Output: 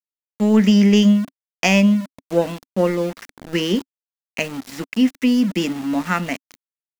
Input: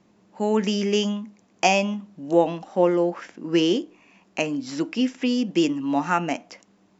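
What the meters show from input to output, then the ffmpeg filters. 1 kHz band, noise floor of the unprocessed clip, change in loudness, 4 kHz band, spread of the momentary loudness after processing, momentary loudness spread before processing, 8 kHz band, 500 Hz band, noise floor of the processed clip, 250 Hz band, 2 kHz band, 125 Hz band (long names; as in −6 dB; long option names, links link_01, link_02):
−3.0 dB, −61 dBFS, +5.0 dB, +3.0 dB, 14 LU, 12 LU, can't be measured, +0.5 dB, below −85 dBFS, +7.0 dB, +4.5 dB, +10.0 dB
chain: -af "equalizer=frequency=200:width_type=o:width=0.33:gain=11,equalizer=frequency=315:width_type=o:width=0.33:gain=-9,equalizer=frequency=800:width_type=o:width=0.33:gain=-10,equalizer=frequency=2000:width_type=o:width=0.33:gain=9,aeval=exprs='0.631*(cos(1*acos(clip(val(0)/0.631,-1,1)))-cos(1*PI/2))+0.02*(cos(7*acos(clip(val(0)/0.631,-1,1)))-cos(7*PI/2))':channel_layout=same,aeval=exprs='val(0)*gte(abs(val(0)),0.0224)':channel_layout=same,adynamicequalizer=threshold=0.0158:dfrequency=270:dqfactor=3.4:tfrequency=270:tqfactor=3.4:attack=5:release=100:ratio=0.375:range=3.5:mode=boostabove:tftype=bell,volume=2.5dB"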